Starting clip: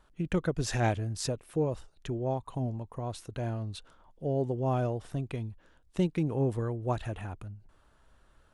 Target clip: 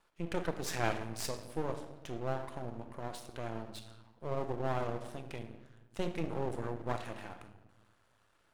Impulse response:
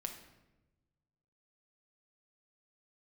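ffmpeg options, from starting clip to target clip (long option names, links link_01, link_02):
-filter_complex "[0:a]highpass=frequency=410:poles=1[link_01];[1:a]atrim=start_sample=2205[link_02];[link_01][link_02]afir=irnorm=-1:irlink=0,aeval=exprs='max(val(0),0)':channel_layout=same,volume=3dB"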